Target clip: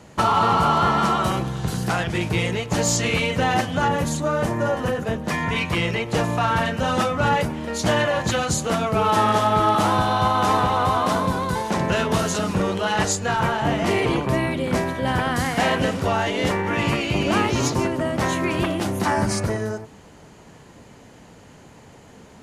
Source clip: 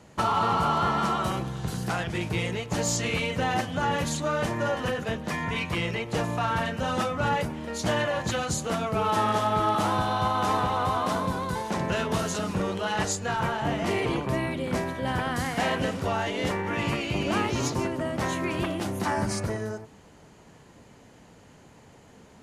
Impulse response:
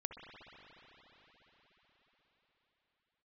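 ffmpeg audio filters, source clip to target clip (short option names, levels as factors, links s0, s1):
-filter_complex "[0:a]asettb=1/sr,asplit=3[s0][s1][s2];[s0]atrim=end=3.884[s3];[s1]atrim=start=3.88:end=5.28,asetpts=PTS-STARTPTS,afade=t=in:d=0.004:c=qsin,afade=t=out:st=1.396:d=0.004:c=qsin,equalizer=f=3200:w=0.56:g=-7[s4];[s2]atrim=start=5.276[s5];[s3][s4]acrossfade=d=0.004:c1=hsin:c2=qsin[s6];[s6][s5]acrossfade=d=0.004:c1=qsin:c2=hsin,volume=2"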